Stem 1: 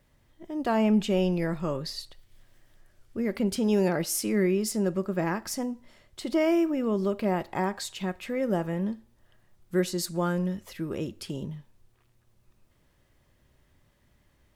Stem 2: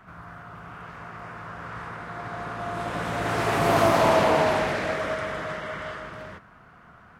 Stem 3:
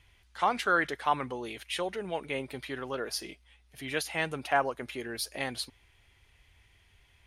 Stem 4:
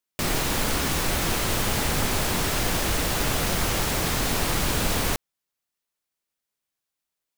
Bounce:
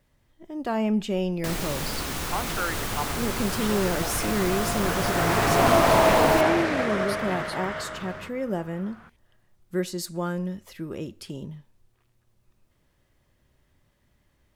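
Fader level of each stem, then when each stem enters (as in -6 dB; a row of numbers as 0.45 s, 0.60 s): -1.5 dB, +1.0 dB, -4.5 dB, -6.0 dB; 0.00 s, 1.90 s, 1.90 s, 1.25 s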